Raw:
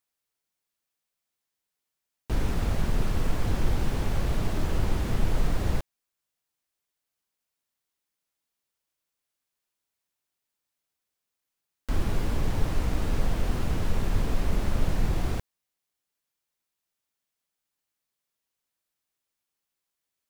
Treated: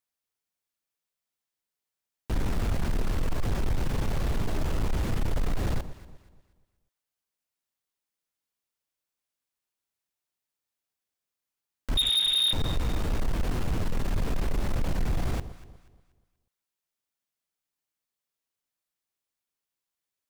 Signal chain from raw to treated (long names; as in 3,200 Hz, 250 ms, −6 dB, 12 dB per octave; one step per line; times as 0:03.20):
0:11.97–0:12.53: voice inversion scrambler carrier 3,700 Hz
leveller curve on the samples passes 1
on a send: delay that swaps between a low-pass and a high-pass 120 ms, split 1,000 Hz, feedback 57%, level −13.5 dB
on the sum: soft clipping −18 dBFS, distortion −14 dB
level −2 dB